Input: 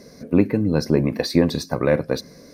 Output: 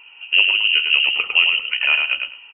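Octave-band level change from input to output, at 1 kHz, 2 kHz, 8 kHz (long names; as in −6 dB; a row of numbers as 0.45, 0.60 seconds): −1.0 dB, +18.5 dB, below −40 dB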